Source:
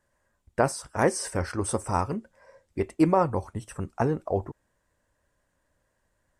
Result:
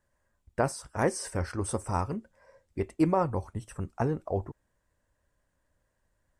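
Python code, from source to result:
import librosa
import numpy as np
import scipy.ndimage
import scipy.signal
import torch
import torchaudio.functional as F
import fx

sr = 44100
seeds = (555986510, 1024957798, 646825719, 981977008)

y = fx.low_shelf(x, sr, hz=120.0, db=6.0)
y = y * 10.0 ** (-4.5 / 20.0)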